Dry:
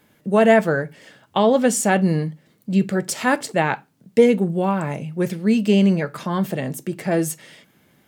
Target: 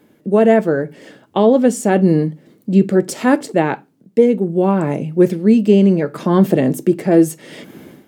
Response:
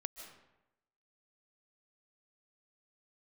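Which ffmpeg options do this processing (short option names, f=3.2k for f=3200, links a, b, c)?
-af "equalizer=f=330:w=0.77:g=13,dynaudnorm=f=100:g=5:m=14dB,volume=-1dB"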